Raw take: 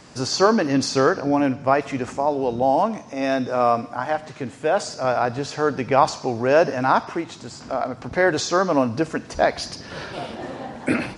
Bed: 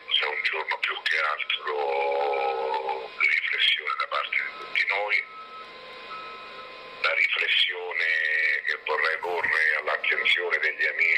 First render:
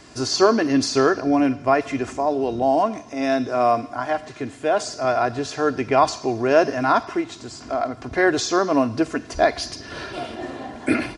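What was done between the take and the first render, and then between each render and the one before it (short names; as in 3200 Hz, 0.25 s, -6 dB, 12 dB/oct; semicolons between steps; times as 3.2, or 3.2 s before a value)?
bell 880 Hz -2.5 dB; comb 2.9 ms, depth 52%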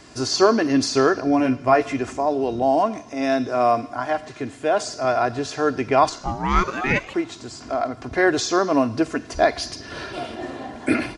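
1.38–1.93 doubler 16 ms -6 dB; 6.09–7.13 ring modulator 320 Hz -> 1600 Hz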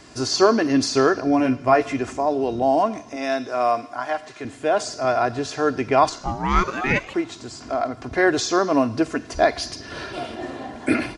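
3.16–4.45 low shelf 310 Hz -11.5 dB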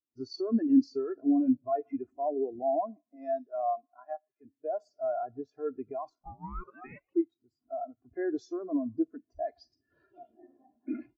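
limiter -13.5 dBFS, peak gain reduction 11 dB; spectral expander 2.5:1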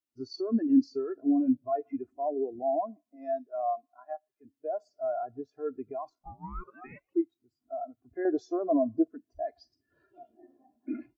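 8.25–9.08 bell 670 Hz +14.5 dB 1.1 oct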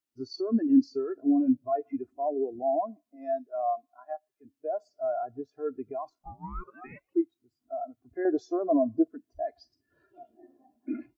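gain +1.5 dB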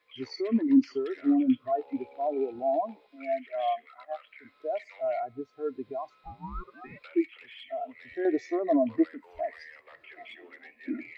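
add bed -26 dB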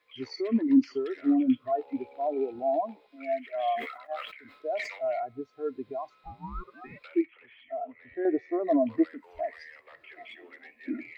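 3.41–5.08 sustainer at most 77 dB/s; 7.21–8.6 LPF 1700 Hz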